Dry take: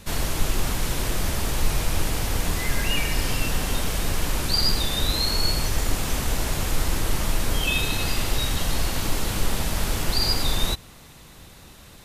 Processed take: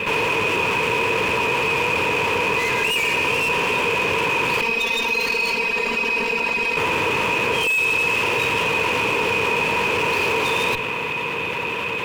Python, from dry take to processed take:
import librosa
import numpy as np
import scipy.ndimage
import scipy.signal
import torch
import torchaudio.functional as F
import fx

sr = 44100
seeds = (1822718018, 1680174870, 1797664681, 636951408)

y = scipy.signal.medfilt(x, 9)
y = scipy.signal.sosfilt(scipy.signal.butter(4, 100.0, 'highpass', fs=sr, output='sos'), y)
y = fx.peak_eq(y, sr, hz=2600.0, db=14.5, octaves=1.5)
y = fx.notch(y, sr, hz=3900.0, q=12.0)
y = fx.robotise(y, sr, hz=230.0, at=(4.61, 6.77))
y = fx.tube_stage(y, sr, drive_db=29.0, bias=0.6)
y = fx.small_body(y, sr, hz=(460.0, 960.0, 2500.0), ring_ms=35, db=18)
y = fx.env_flatten(y, sr, amount_pct=70)